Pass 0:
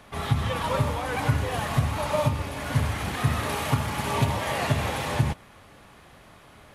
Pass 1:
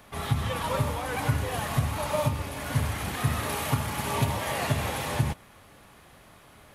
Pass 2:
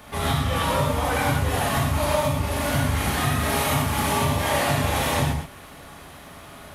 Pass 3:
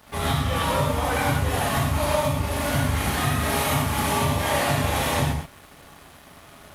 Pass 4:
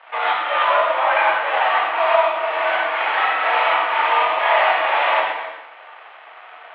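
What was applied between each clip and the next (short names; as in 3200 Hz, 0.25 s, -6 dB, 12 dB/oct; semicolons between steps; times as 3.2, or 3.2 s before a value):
high shelf 11000 Hz +11.5 dB; gain -2.5 dB
compressor, threshold -29 dBFS, peak gain reduction 10 dB; non-linear reverb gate 0.15 s flat, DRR -3 dB; gain +5.5 dB
crossover distortion -47 dBFS
non-linear reverb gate 0.32 s rising, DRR 11.5 dB; mistuned SSB +57 Hz 540–2900 Hz; gain +9 dB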